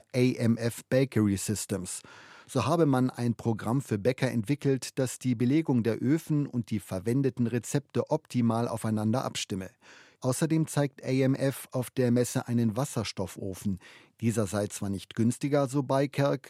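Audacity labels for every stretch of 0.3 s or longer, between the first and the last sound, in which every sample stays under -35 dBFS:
2.010000	2.510000	silence
9.670000	10.240000	silence
13.750000	14.220000	silence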